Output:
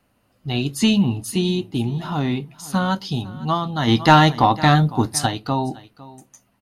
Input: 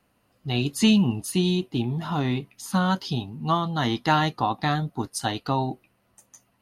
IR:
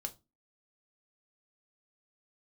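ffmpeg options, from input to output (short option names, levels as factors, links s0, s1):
-filter_complex "[0:a]aecho=1:1:505:0.106,asplit=3[s0][s1][s2];[s0]afade=t=out:st=3.87:d=0.02[s3];[s1]acontrast=85,afade=t=in:st=3.87:d=0.02,afade=t=out:st=5.25:d=0.02[s4];[s2]afade=t=in:st=5.25:d=0.02[s5];[s3][s4][s5]amix=inputs=3:normalize=0,asplit=2[s6][s7];[1:a]atrim=start_sample=2205,lowshelf=f=370:g=7.5[s8];[s7][s8]afir=irnorm=-1:irlink=0,volume=0.355[s9];[s6][s9]amix=inputs=2:normalize=0"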